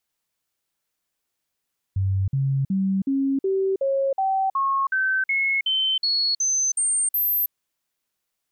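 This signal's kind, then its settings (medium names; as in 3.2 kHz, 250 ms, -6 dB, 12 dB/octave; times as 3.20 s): stepped sine 96.3 Hz up, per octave 2, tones 15, 0.32 s, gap 0.05 s -19 dBFS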